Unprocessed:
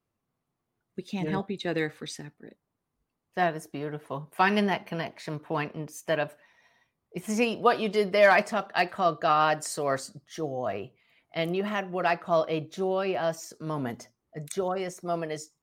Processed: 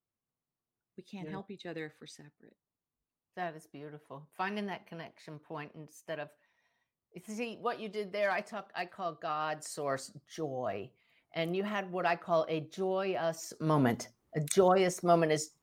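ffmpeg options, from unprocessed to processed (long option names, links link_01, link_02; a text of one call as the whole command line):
ffmpeg -i in.wav -af "volume=4.5dB,afade=type=in:start_time=9.4:duration=0.71:silence=0.421697,afade=type=in:start_time=13.32:duration=0.47:silence=0.334965" out.wav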